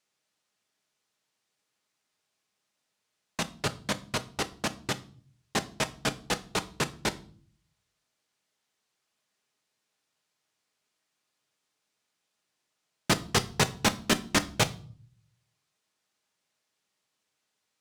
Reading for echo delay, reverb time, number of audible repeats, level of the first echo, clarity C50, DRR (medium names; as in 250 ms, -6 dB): no echo, 0.45 s, no echo, no echo, 18.5 dB, 8.5 dB